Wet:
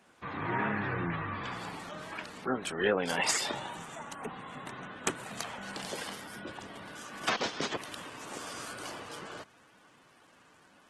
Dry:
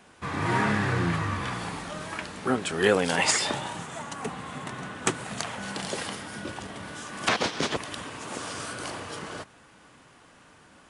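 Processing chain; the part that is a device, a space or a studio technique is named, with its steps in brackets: noise-suppressed video call (high-pass 170 Hz 6 dB/octave; spectral gate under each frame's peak -25 dB strong; trim -5.5 dB; Opus 16 kbps 48 kHz)

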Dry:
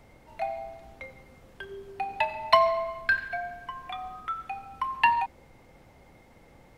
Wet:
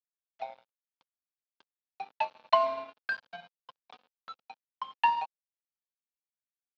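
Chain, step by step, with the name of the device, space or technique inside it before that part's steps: blown loudspeaker (crossover distortion -32.5 dBFS; cabinet simulation 200–4300 Hz, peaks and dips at 360 Hz -7 dB, 520 Hz +6 dB, 880 Hz +5 dB, 2 kHz -9 dB); trim -4.5 dB

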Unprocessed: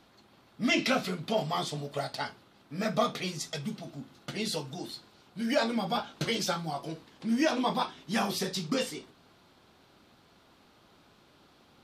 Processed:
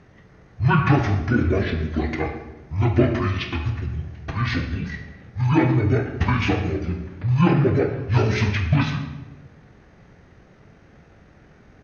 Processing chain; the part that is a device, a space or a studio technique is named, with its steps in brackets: monster voice (pitch shift -10.5 st; formant shift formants -3 st; bass shelf 210 Hz +6 dB; reverberation RT60 1.0 s, pre-delay 25 ms, DRR 5.5 dB); trim +7.5 dB

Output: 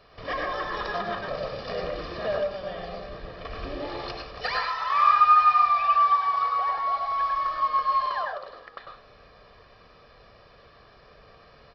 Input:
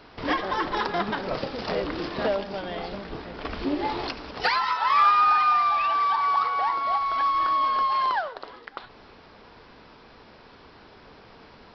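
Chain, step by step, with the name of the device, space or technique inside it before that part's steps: microphone above a desk (comb 1.7 ms, depth 68%; reverberation RT60 0.40 s, pre-delay 95 ms, DRR 0 dB); trim -7.5 dB

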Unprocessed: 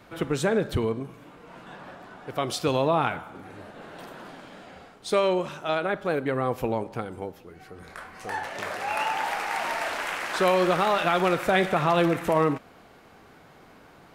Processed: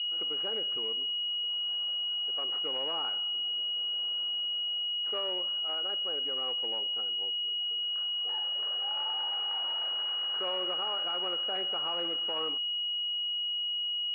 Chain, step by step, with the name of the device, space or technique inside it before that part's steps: toy sound module (decimation joined by straight lines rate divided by 8×; class-D stage that switches slowly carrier 2.9 kHz; cabinet simulation 660–4000 Hz, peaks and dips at 660 Hz -9 dB, 990 Hz -7 dB, 1.8 kHz -5 dB, 2.8 kHz +10 dB); trim -6.5 dB

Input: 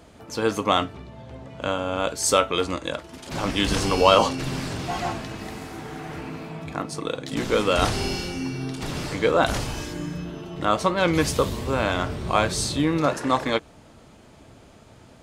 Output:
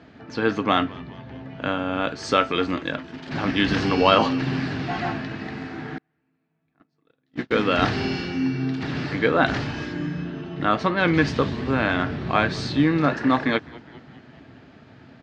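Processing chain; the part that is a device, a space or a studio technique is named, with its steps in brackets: frequency-shifting delay pedal into a guitar cabinet (frequency-shifting echo 205 ms, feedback 64%, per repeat -98 Hz, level -22 dB; cabinet simulation 92–4400 Hz, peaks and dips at 140 Hz +4 dB, 260 Hz +6 dB, 540 Hz -5 dB, 1 kHz -4 dB, 1.7 kHz +7 dB, 3.4 kHz -3 dB); 5.98–7.51 s: gate -21 dBFS, range -41 dB; trim +1 dB

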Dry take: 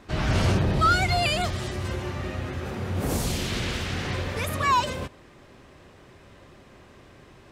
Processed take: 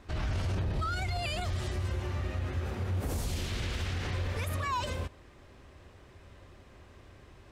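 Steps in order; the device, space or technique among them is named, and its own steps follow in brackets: car stereo with a boomy subwoofer (resonant low shelf 110 Hz +6.5 dB, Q 1.5; peak limiter -19.5 dBFS, peak gain reduction 11.5 dB); trim -5.5 dB

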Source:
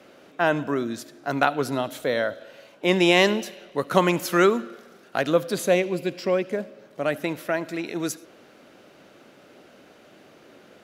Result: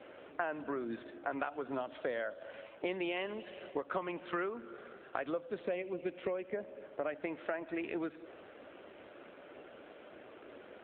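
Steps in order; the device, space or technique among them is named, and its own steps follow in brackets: voicemail (band-pass 300–3200 Hz; compression 8:1, threshold -35 dBFS, peak gain reduction 21 dB; trim +1.5 dB; AMR-NB 7.4 kbps 8 kHz)

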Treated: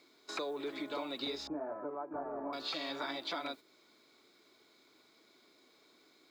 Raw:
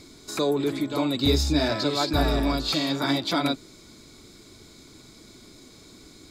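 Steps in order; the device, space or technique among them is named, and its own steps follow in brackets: baby monitor (band-pass 470–3600 Hz; compression 10:1, threshold -34 dBFS, peak gain reduction 12 dB; white noise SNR 30 dB; gate -47 dBFS, range -9 dB); 1.47–2.53 s: inverse Chebyshev low-pass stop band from 3.9 kHz, stop band 60 dB; trim -1.5 dB

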